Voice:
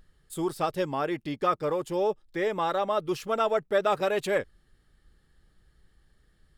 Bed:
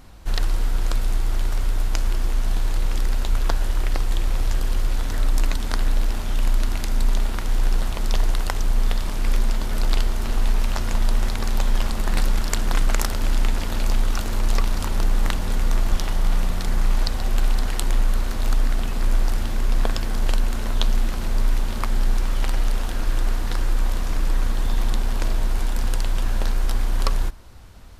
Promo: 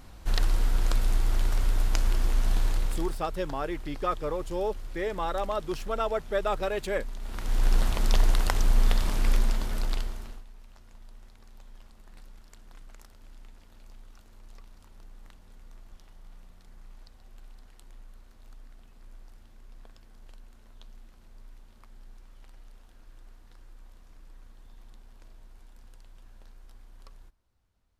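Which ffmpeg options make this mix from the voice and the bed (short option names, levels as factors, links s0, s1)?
-filter_complex "[0:a]adelay=2600,volume=0.668[s0];[1:a]volume=4.73,afade=t=out:st=2.64:d=0.58:silence=0.177828,afade=t=in:st=7.2:d=0.58:silence=0.149624,afade=t=out:st=9.12:d=1.32:silence=0.0375837[s1];[s0][s1]amix=inputs=2:normalize=0"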